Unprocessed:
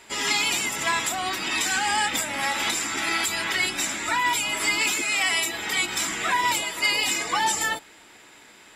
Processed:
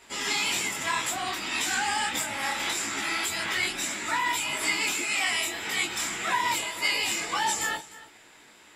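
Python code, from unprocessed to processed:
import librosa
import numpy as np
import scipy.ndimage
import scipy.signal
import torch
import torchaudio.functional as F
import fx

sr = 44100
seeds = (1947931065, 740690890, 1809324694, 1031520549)

y = x + 10.0 ** (-18.5 / 20.0) * np.pad(x, (int(303 * sr / 1000.0), 0))[:len(x)]
y = fx.detune_double(y, sr, cents=60)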